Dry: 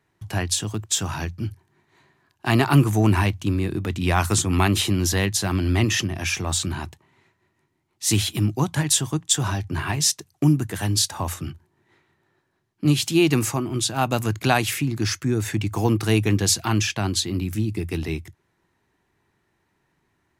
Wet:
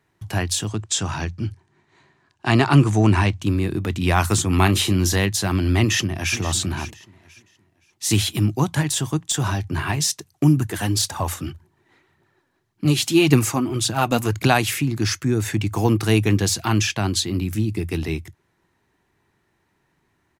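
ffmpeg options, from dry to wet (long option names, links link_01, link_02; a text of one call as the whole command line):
ffmpeg -i in.wav -filter_complex "[0:a]asettb=1/sr,asplit=3[link_01][link_02][link_03];[link_01]atrim=end=0.684[link_04];[link_02]atrim=start=0.68:end=3.42,asetpts=PTS-STARTPTS,afade=type=in:duration=0.004:curve=qsin,afade=type=out:start_time=2.736:duration=0.004:curve=qsin,lowpass=frequency=8800:width=0.5412,lowpass=frequency=8800:width=1.3066[link_05];[link_03]atrim=start=3.416[link_06];[link_04][link_05]acrossfade=duration=0.004:curve1=hsin:curve2=qsin[link_07];[link_07][link_06]acrossfade=duration=0.004:curve1=qsin:curve2=hsin,asettb=1/sr,asplit=3[link_08][link_09][link_10];[link_08]atrim=end=4.574[link_11];[link_09]atrim=start=4.57:end=5.17,asetpts=PTS-STARTPTS,afade=type=in:duration=0.004:curve=qsin,afade=type=out:start_time=0.596:duration=0.004:curve=qsin,asplit=2[link_12][link_13];[link_13]adelay=32,volume=-12.5dB[link_14];[link_12][link_14]amix=inputs=2:normalize=0,atrim=end_sample=26460[link_15];[link_10]atrim=start=5.166[link_16];[link_11][link_15]acrossfade=duration=0.004:curve1=hsin:curve2=qsin[link_17];[link_17][link_16]acrossfade=duration=0.004:curve1=qsin:curve2=hsin,asplit=2[link_18][link_19];[link_19]afade=type=in:start_time=5.8:duration=0.01,afade=type=out:start_time=6.38:duration=0.01,aecho=0:1:520|1040|1560:0.199526|0.0498816|0.0124704[link_20];[link_18][link_20]amix=inputs=2:normalize=0,asplit=3[link_21][link_22][link_23];[link_21]afade=type=out:start_time=10.56:duration=0.02[link_24];[link_22]aphaser=in_gain=1:out_gain=1:delay=4.3:decay=0.44:speed=1.8:type=triangular,afade=type=in:start_time=10.56:duration=0.02,afade=type=out:start_time=14.46:duration=0.02[link_25];[link_23]afade=type=in:start_time=14.46:duration=0.02[link_26];[link_24][link_25][link_26]amix=inputs=3:normalize=0,deesser=0.35,volume=2dB" out.wav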